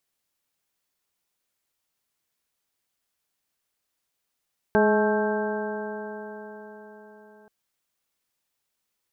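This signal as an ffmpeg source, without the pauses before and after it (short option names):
-f lavfi -i "aevalsrc='0.0794*pow(10,-3*t/4.65)*sin(2*PI*210.3*t)+0.112*pow(10,-3*t/4.65)*sin(2*PI*422.43*t)+0.0708*pow(10,-3*t/4.65)*sin(2*PI*638.17*t)+0.0631*pow(10,-3*t/4.65)*sin(2*PI*859.27*t)+0.0211*pow(10,-3*t/4.65)*sin(2*PI*1087.4*t)+0.0119*pow(10,-3*t/4.65)*sin(2*PI*1324.14*t)+0.0531*pow(10,-3*t/4.65)*sin(2*PI*1570.98*t)':d=2.73:s=44100"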